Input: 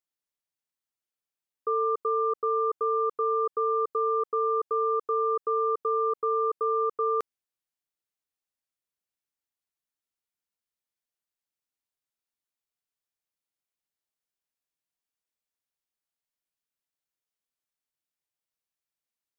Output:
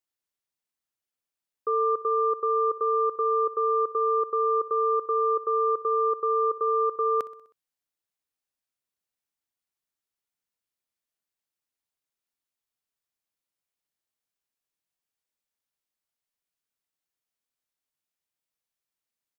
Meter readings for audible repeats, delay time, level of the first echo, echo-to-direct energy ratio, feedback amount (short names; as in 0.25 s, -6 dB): 4, 63 ms, -19.0 dB, -17.0 dB, 58%